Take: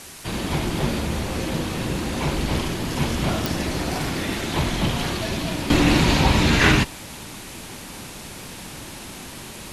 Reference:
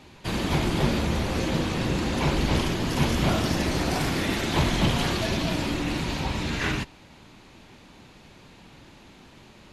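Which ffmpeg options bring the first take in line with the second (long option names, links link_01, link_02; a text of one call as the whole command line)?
ffmpeg -i in.wav -af "adeclick=threshold=4,afwtdn=0.011,asetnsamples=nb_out_samples=441:pad=0,asendcmd='5.7 volume volume -11dB',volume=0dB" out.wav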